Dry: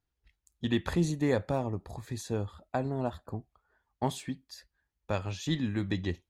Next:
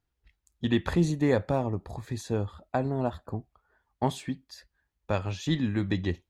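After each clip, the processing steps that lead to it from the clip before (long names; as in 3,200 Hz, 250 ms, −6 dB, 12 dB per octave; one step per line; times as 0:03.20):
high-shelf EQ 5,000 Hz −6 dB
level +3.5 dB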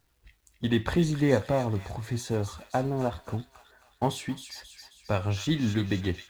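mu-law and A-law mismatch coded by mu
delay with a high-pass on its return 268 ms, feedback 52%, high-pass 2,100 Hz, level −6 dB
flanger 0.83 Hz, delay 7.1 ms, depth 3.3 ms, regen +74%
level +4.5 dB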